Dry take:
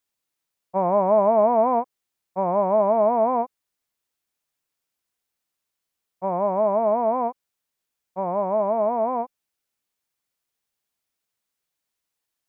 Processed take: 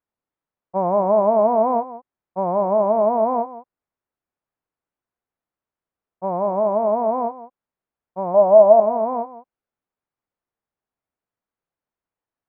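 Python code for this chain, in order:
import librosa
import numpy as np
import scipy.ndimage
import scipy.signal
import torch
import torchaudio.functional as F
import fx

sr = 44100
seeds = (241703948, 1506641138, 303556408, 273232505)

y = scipy.signal.sosfilt(scipy.signal.butter(2, 1300.0, 'lowpass', fs=sr, output='sos'), x)
y = fx.peak_eq(y, sr, hz=650.0, db=12.5, octaves=0.52, at=(8.34, 8.8))
y = y + 10.0 ** (-15.0 / 20.0) * np.pad(y, (int(174 * sr / 1000.0), 0))[:len(y)]
y = y * librosa.db_to_amplitude(1.5)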